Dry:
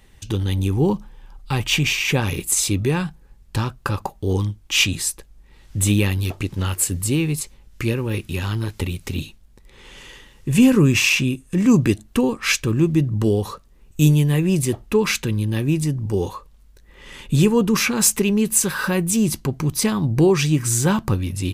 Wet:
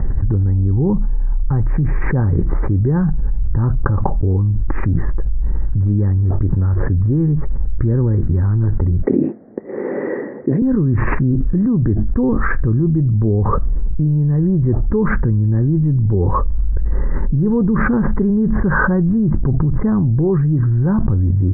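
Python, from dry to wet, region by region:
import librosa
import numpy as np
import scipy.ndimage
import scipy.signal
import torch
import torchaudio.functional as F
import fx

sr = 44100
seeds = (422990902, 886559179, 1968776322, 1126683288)

y = fx.chain(x, sr, fx.highpass(hz=280.0, slope=24),
    fx.band_shelf(hz=1200.0, db=-11.5, octaves=1.2), at=(9.02, 10.62))
y = scipy.signal.sosfilt(scipy.signal.butter(12, 1800.0, 'lowpass', fs=sr, output='sos'), y)
y = fx.tilt_eq(y, sr, slope=-4.0)
y = fx.env_flatten(y, sr, amount_pct=100)
y = y * librosa.db_to_amplitude(-13.5)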